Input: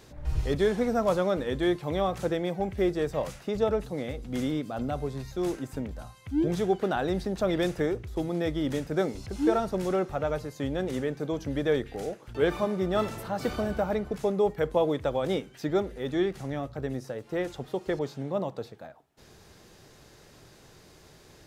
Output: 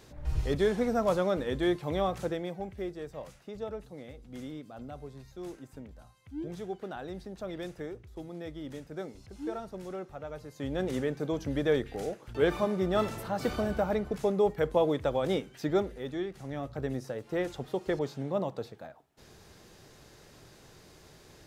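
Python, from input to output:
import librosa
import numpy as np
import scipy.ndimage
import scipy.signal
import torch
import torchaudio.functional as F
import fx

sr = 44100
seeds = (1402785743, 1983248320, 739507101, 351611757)

y = fx.gain(x, sr, db=fx.line((2.08, -2.0), (2.95, -12.0), (10.31, -12.0), (10.81, -1.0), (15.82, -1.0), (16.27, -9.0), (16.74, -1.0)))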